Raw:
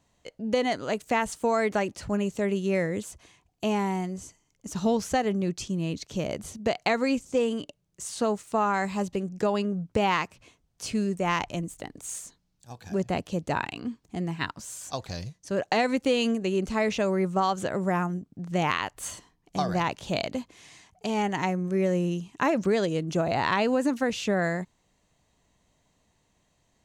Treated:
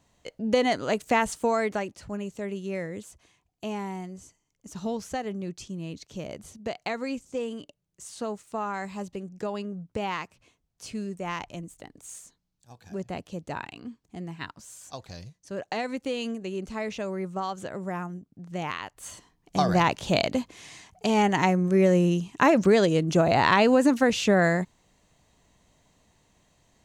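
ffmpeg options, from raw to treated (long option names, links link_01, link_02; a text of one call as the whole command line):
ffmpeg -i in.wav -af "volume=14dB,afade=type=out:start_time=1.24:duration=0.71:silence=0.354813,afade=type=in:start_time=19.03:duration=0.68:silence=0.266073" out.wav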